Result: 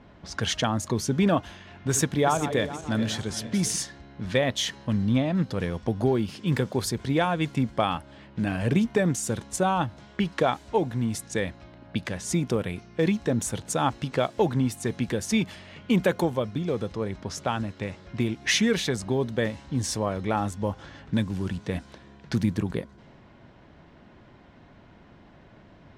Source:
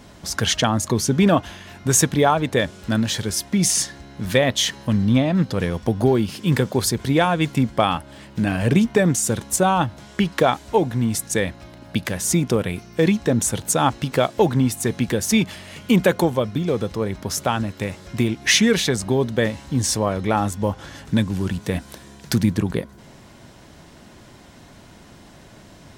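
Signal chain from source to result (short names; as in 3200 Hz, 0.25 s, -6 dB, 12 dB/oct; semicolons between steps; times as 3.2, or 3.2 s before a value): 1.5–3.76 regenerating reverse delay 0.219 s, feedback 60%, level -11 dB; low-pass opened by the level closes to 2500 Hz, open at -17 dBFS; high shelf 7100 Hz -6 dB; gain -6 dB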